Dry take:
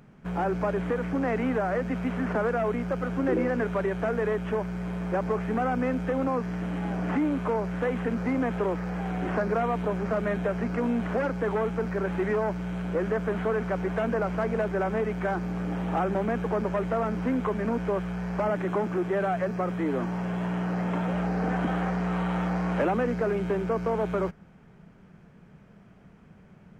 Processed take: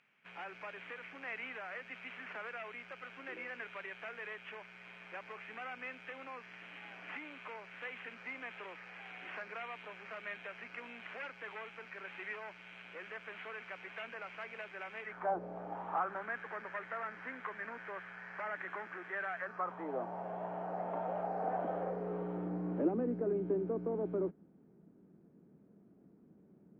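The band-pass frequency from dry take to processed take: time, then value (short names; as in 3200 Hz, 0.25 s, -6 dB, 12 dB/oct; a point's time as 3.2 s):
band-pass, Q 3
15.02 s 2500 Hz
15.37 s 520 Hz
16.37 s 1800 Hz
19.35 s 1800 Hz
19.94 s 700 Hz
21.48 s 700 Hz
22.58 s 310 Hz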